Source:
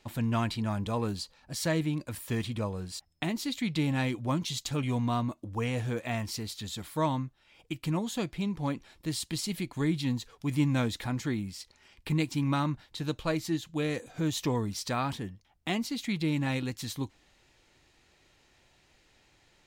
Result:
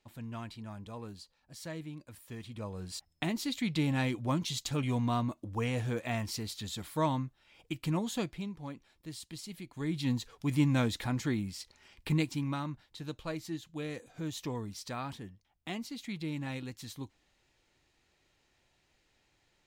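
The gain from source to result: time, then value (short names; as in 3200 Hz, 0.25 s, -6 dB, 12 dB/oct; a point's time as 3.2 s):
2.4 s -13 dB
2.93 s -1.5 dB
8.2 s -1.5 dB
8.6 s -11 dB
9.68 s -11 dB
10.1 s -0.5 dB
12.14 s -0.5 dB
12.6 s -8 dB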